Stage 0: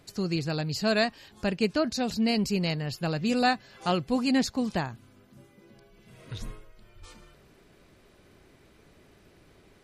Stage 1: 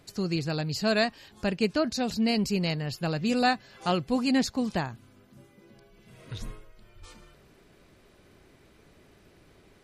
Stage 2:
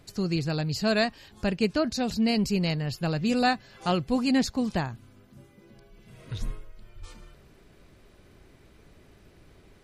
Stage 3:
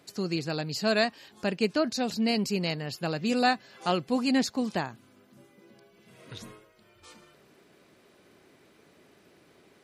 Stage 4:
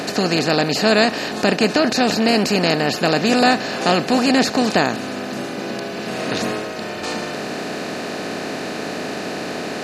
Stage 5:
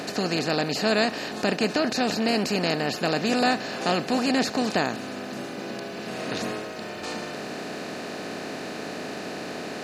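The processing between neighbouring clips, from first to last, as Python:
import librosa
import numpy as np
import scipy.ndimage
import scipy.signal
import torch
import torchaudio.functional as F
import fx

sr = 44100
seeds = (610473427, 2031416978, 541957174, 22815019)

y1 = x
y2 = fx.low_shelf(y1, sr, hz=100.0, db=8.5)
y3 = scipy.signal.sosfilt(scipy.signal.butter(2, 220.0, 'highpass', fs=sr, output='sos'), y2)
y4 = fx.bin_compress(y3, sr, power=0.4)
y4 = y4 * 10.0 ** (6.0 / 20.0)
y5 = fx.quant_dither(y4, sr, seeds[0], bits=10, dither='none')
y5 = y5 * 10.0 ** (-7.5 / 20.0)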